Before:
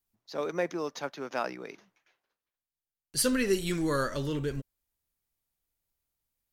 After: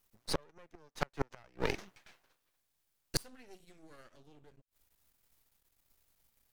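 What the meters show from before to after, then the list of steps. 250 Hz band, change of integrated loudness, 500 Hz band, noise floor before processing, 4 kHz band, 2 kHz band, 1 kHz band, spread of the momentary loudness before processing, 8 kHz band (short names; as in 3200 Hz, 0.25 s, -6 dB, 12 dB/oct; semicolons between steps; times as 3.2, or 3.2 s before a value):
-14.5 dB, -8.5 dB, -11.5 dB, under -85 dBFS, -6.0 dB, -8.5 dB, -8.0 dB, 12 LU, -11.0 dB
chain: flipped gate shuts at -28 dBFS, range -38 dB; half-wave rectifier; gain +14 dB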